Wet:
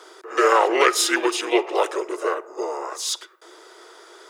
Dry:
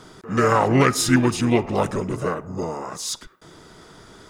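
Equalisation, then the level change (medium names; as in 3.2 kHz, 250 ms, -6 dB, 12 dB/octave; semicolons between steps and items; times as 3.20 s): dynamic bell 3.2 kHz, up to +6 dB, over -44 dBFS, Q 2.2; Chebyshev high-pass 340 Hz, order 6; +2.0 dB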